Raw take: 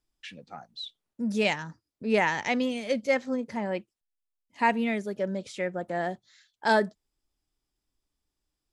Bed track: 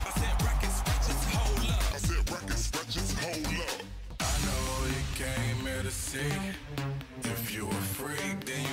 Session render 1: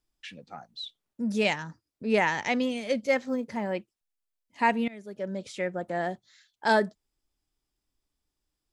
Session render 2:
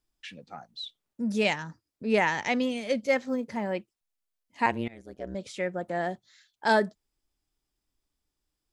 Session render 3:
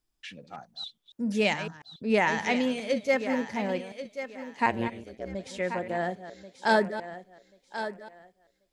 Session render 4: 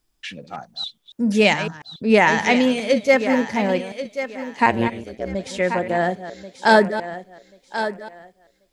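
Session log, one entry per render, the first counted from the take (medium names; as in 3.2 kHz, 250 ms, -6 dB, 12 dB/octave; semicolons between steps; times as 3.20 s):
3.05–3.72 s: short-mantissa float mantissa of 6-bit; 4.88–5.48 s: fade in, from -21.5 dB
4.66–5.35 s: AM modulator 120 Hz, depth 100%
chunks repeated in reverse 140 ms, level -12 dB; on a send: thinning echo 1086 ms, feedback 26%, high-pass 200 Hz, level -10.5 dB
trim +9.5 dB; peak limiter -3 dBFS, peak gain reduction 1.5 dB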